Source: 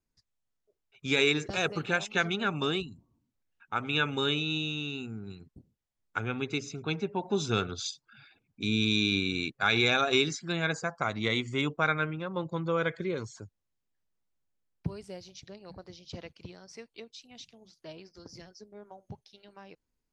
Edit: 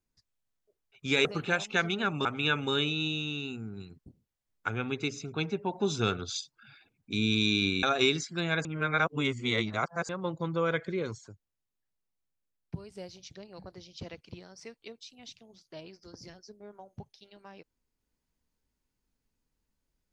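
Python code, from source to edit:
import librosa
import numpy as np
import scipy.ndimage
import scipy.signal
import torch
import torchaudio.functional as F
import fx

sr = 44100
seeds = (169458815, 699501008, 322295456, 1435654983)

y = fx.edit(x, sr, fx.cut(start_s=1.25, length_s=0.41),
    fx.cut(start_s=2.66, length_s=1.09),
    fx.cut(start_s=9.33, length_s=0.62),
    fx.reverse_span(start_s=10.77, length_s=1.44),
    fx.clip_gain(start_s=13.3, length_s=1.77, db=-4.5), tone=tone)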